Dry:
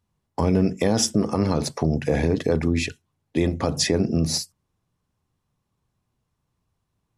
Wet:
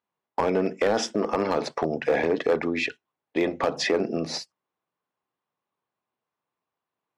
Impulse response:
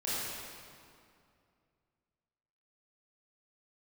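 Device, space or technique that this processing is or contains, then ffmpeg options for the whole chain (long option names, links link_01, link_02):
walkie-talkie: -af "highpass=450,lowpass=2800,asoftclip=type=hard:threshold=-19.5dB,agate=range=-7dB:threshold=-41dB:ratio=16:detection=peak,volume=4.5dB"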